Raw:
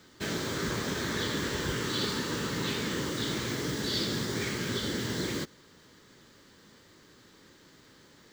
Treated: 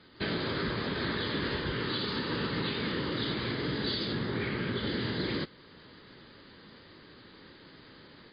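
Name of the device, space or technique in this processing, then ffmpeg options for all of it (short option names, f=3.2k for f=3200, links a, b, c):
low-bitrate web radio: -filter_complex "[0:a]asettb=1/sr,asplit=3[a][b][c];[a]atrim=end=4.134[d];[b]atrim=start=4.13:end=4.87,asetpts=PTS-STARTPTS,afade=t=in:d=0.004:c=qsin,afade=t=out:st=0.736:d=0.004:c=qsin,bass=f=250:g=1,treble=f=4k:g=-11[e];[c]atrim=start=4.866[f];[d][e]acrossfade=d=0.004:c1=hsin:c2=qsin[g];[g][f]acrossfade=d=0.004:c1=qsin:c2=hsin,dynaudnorm=f=120:g=3:m=5dB,alimiter=limit=-21.5dB:level=0:latency=1:release=445" -ar 11025 -c:a libmp3lame -b:a 32k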